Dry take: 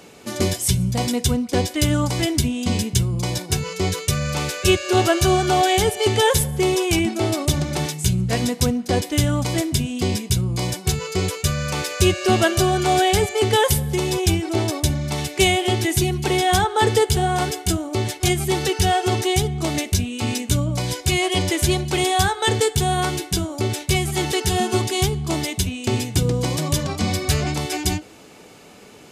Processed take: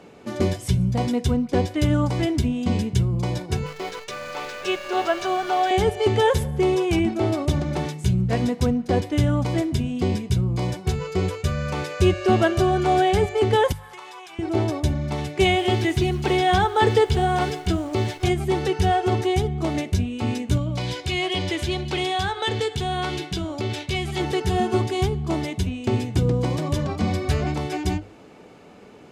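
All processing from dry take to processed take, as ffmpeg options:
-filter_complex "[0:a]asettb=1/sr,asplit=3[s0][s1][s2];[s0]atrim=end=3.664[s3];[s1]atrim=start=3.66:end=5.71,asetpts=PTS-STARTPTS,afade=t=in:d=0.004:c=qsin,afade=t=out:st=2.046:d=0.004:c=qsin,highpass=560,lowpass=6700,acrusher=bits=6:dc=4:mix=0:aa=0.000001[s4];[s2]atrim=start=5.706[s5];[s3][s4]acrossfade=d=0.004:c1=hsin:c2=qsin[s6];[s6][s5]acrossfade=d=0.004:c1=qsin:c2=hsin,asettb=1/sr,asplit=3[s7][s8][s9];[s7]atrim=end=13.724[s10];[s8]atrim=start=13.72:end=14.39,asetpts=PTS-STARTPTS,afade=t=in:d=0.004:c=qsin,afade=t=out:st=0.666:d=0.004:c=qsin,highpass=f=1100:t=q:w=2.4,acompressor=threshold=0.0224:ratio=4:attack=3.2:release=140:knee=1:detection=peak[s11];[s9]atrim=start=14.386[s12];[s10][s11]acrossfade=d=0.004:c1=hsin:c2=qsin[s13];[s13][s12]acrossfade=d=0.004:c1=qsin:c2=hsin,asettb=1/sr,asplit=3[s14][s15][s16];[s14]atrim=end=15.454[s17];[s15]atrim=start=15.45:end=18.26,asetpts=PTS-STARTPTS,afade=t=in:d=0.004:c=qsin,afade=t=out:st=2.806:d=0.004:c=qsin,acrossover=split=4600[s18][s19];[s19]acompressor=threshold=0.0158:ratio=4:attack=1:release=60[s20];[s18][s20]amix=inputs=2:normalize=0,highshelf=f=2400:g=8.5,acrusher=bits=7:dc=4:mix=0:aa=0.000001[s21];[s16]atrim=start=18.256[s22];[s17][s21]acrossfade=d=0.004:c1=hsin:c2=qsin[s23];[s23][s22]acrossfade=d=0.004:c1=qsin:c2=hsin,asettb=1/sr,asplit=3[s24][s25][s26];[s24]atrim=end=20.574[s27];[s25]atrim=start=20.57:end=24.2,asetpts=PTS-STARTPTS,afade=t=in:d=0.004:c=qsin,afade=t=out:st=3.626:d=0.004:c=qsin,acompressor=threshold=0.0631:ratio=2:attack=3.2:release=140:knee=1:detection=peak,equalizer=f=3500:w=0.71:g=10[s28];[s26]atrim=start=24.196[s29];[s27][s28]acrossfade=d=0.004:c1=hsin:c2=qsin[s30];[s30][s29]acrossfade=d=0.004:c1=qsin:c2=hsin,lowpass=f=1400:p=1,bandreject=f=50:t=h:w=6,bandreject=f=100:t=h:w=6,bandreject=f=150:t=h:w=6"

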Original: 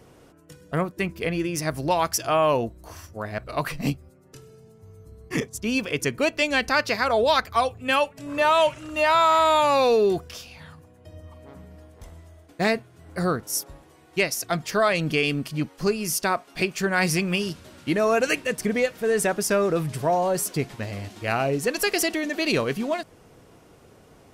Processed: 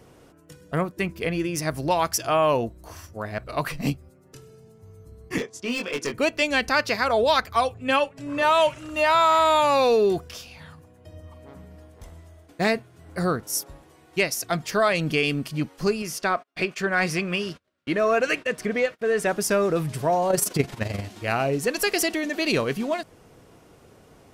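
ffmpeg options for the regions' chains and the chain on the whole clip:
-filter_complex "[0:a]asettb=1/sr,asplit=3[s0][s1][s2];[s0]atrim=end=5.384[s3];[s1]atrim=start=5.38:end=6.14,asetpts=PTS-STARTPTS,afade=t=in:d=0.004:c=qsin,afade=t=out:st=0.756:d=0.004:c=qsin,highpass=250,lowpass=5600,asoftclip=type=hard:threshold=0.0668,asplit=2[s4][s5];[s5]adelay=21,volume=0.631[s6];[s4][s6]amix=inputs=2:normalize=0,atrim=end_sample=33516[s7];[s2]atrim=start=6.136[s8];[s3][s7]acrossfade=d=0.004:c1=hsin:c2=qsin[s9];[s9][s8]acrossfade=d=0.004:c1=qsin:c2=hsin,asettb=1/sr,asplit=3[s10][s11][s12];[s10]atrim=end=7.744[s13];[s11]atrim=start=7.74:end=8.43,asetpts=PTS-STARTPTS,afade=t=in:d=0.004:c=qsin,afade=t=out:st=0.686:d=0.004:c=qsin,lowpass=11000,highshelf=f=4400:g=-4.5,aecho=1:1:7.4:0.4,atrim=end_sample=30429[s14];[s12]atrim=start=8.426[s15];[s13][s14]acrossfade=d=0.004:c1=hsin:c2=qsin[s16];[s16][s15]acrossfade=d=0.004:c1=qsin:c2=hsin,asettb=1/sr,asplit=3[s17][s18][s19];[s17]atrim=end=16.024[s20];[s18]atrim=start=16.02:end=19.27,asetpts=PTS-STARTPTS,afade=t=in:d=0.004:c=qsin,afade=t=out:st=3.246:d=0.004:c=qsin,bandreject=f=880:w=6.4,agate=range=0.0282:threshold=0.00794:ratio=16:release=100:detection=peak,asplit=2[s21][s22];[s22]highpass=f=720:p=1,volume=2.51,asoftclip=type=tanh:threshold=0.355[s23];[s21][s23]amix=inputs=2:normalize=0,lowpass=f=2000:p=1,volume=0.501[s24];[s19]atrim=start=19.266[s25];[s20][s24]acrossfade=d=0.004:c1=hsin:c2=qsin[s26];[s26][s25]acrossfade=d=0.004:c1=qsin:c2=hsin,asettb=1/sr,asplit=3[s27][s28][s29];[s27]atrim=end=20.304[s30];[s28]atrim=start=20.3:end=21.01,asetpts=PTS-STARTPTS,afade=t=in:d=0.004:c=qsin,afade=t=out:st=0.706:d=0.004:c=qsin,acontrast=60,tremolo=f=23:d=0.71[s31];[s29]atrim=start=21.006[s32];[s30][s31]acrossfade=d=0.004:c1=hsin:c2=qsin[s33];[s33][s32]acrossfade=d=0.004:c1=qsin:c2=hsin"

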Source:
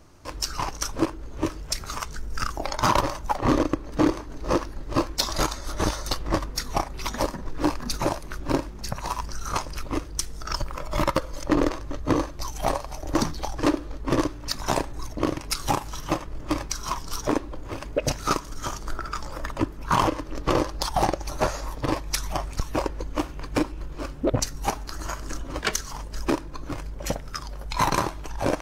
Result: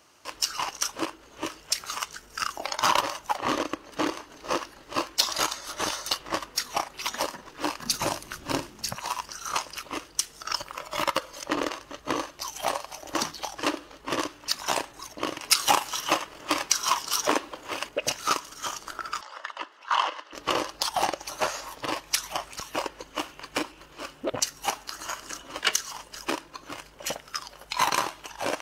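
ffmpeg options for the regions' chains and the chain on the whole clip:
-filter_complex "[0:a]asettb=1/sr,asplit=3[s0][s1][s2];[s0]atrim=end=7.804[s3];[s1]atrim=start=7.8:end=8.95,asetpts=PTS-STARTPTS,afade=t=in:d=0.004:c=qsin,afade=t=out:st=1.146:d=0.004:c=qsin,bass=f=250:g=12,treble=f=4000:g=4,bandreject=f=50:t=h:w=6,bandreject=f=100:t=h:w=6,bandreject=f=150:t=h:w=6,bandreject=f=200:t=h:w=6,bandreject=f=250:t=h:w=6,bandreject=f=300:t=h:w=6,bandreject=f=350:t=h:w=6,bandreject=f=400:t=h:w=6,bandreject=f=450:t=h:w=6[s4];[s2]atrim=start=8.946[s5];[s3][s4]acrossfade=d=0.004:c1=hsin:c2=qsin[s6];[s6][s5]acrossfade=d=0.004:c1=qsin:c2=hsin,asettb=1/sr,asplit=3[s7][s8][s9];[s7]atrim=end=15.424[s10];[s8]atrim=start=15.42:end=17.89,asetpts=PTS-STARTPTS,afade=t=in:d=0.004:c=qsin,afade=t=out:st=2.466:d=0.004:c=qsin,lowshelf=f=190:g=-7,acontrast=52[s11];[s9]atrim=start=17.886[s12];[s10][s11]acrossfade=d=0.004:c1=hsin:c2=qsin[s13];[s13][s12]acrossfade=d=0.004:c1=qsin:c2=hsin,asettb=1/sr,asplit=3[s14][s15][s16];[s14]atrim=end=19.214[s17];[s15]atrim=start=19.21:end=20.33,asetpts=PTS-STARTPTS,afade=t=in:d=0.004:c=qsin,afade=t=out:st=1.116:d=0.004:c=qsin,bandreject=f=2400:w=8.5,acompressor=mode=upward:threshold=0.02:ratio=2.5:attack=3.2:release=140:knee=2.83:detection=peak,highpass=740,lowpass=4100[s18];[s16]atrim=start=20.326[s19];[s17][s18]acrossfade=d=0.004:c1=hsin:c2=qsin[s20];[s20][s19]acrossfade=d=0.004:c1=qsin:c2=hsin,highpass=f=1100:p=1,equalizer=f=2900:t=o:w=0.21:g=7,volume=1.26"

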